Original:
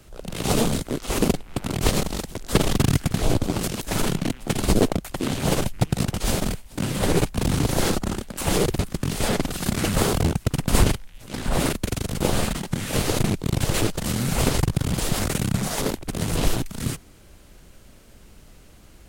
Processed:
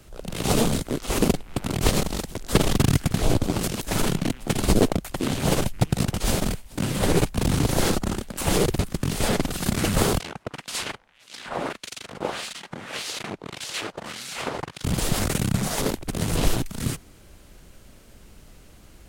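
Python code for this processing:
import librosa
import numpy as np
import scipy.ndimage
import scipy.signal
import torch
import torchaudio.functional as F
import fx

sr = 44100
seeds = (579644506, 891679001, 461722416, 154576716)

y = fx.filter_lfo_bandpass(x, sr, shape='sine', hz=1.7, low_hz=780.0, high_hz=4600.0, q=0.85, at=(10.18, 14.83), fade=0.02)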